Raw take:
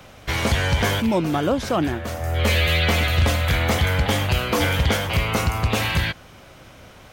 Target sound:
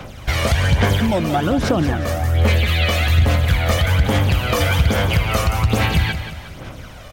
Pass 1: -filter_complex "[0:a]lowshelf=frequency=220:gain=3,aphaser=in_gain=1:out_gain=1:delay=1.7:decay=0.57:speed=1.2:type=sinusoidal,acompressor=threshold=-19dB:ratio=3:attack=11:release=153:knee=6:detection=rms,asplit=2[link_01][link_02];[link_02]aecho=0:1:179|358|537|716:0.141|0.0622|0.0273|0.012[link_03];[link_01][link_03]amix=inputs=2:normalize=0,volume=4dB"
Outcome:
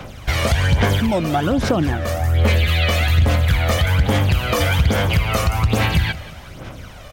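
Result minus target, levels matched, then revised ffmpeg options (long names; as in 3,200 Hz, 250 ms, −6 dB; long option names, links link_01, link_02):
echo-to-direct −7 dB
-filter_complex "[0:a]lowshelf=frequency=220:gain=3,aphaser=in_gain=1:out_gain=1:delay=1.7:decay=0.57:speed=1.2:type=sinusoidal,acompressor=threshold=-19dB:ratio=3:attack=11:release=153:knee=6:detection=rms,asplit=2[link_01][link_02];[link_02]aecho=0:1:179|358|537|716|895:0.316|0.139|0.0612|0.0269|0.0119[link_03];[link_01][link_03]amix=inputs=2:normalize=0,volume=4dB"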